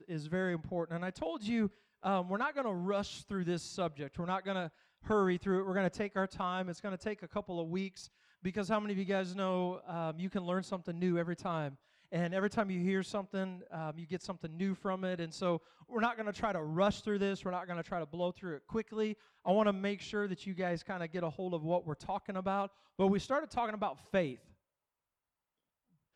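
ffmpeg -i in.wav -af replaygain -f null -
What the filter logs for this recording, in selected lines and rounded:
track_gain = +16.6 dB
track_peak = 0.088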